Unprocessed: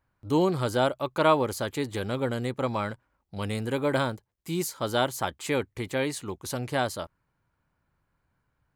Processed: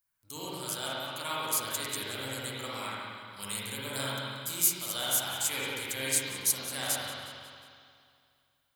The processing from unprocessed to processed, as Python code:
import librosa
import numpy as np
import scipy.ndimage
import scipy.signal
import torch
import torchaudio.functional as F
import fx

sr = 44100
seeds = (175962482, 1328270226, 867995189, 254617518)

p1 = fx.bass_treble(x, sr, bass_db=6, treble_db=9)
p2 = fx.rider(p1, sr, range_db=10, speed_s=0.5)
p3 = librosa.effects.preemphasis(p2, coef=0.97, zi=[0.0])
p4 = p3 + fx.echo_feedback(p3, sr, ms=181, feedback_pct=49, wet_db=-16.5, dry=0)
y = fx.rev_spring(p4, sr, rt60_s=2.3, pass_ms=(45, 60), chirp_ms=75, drr_db=-8.0)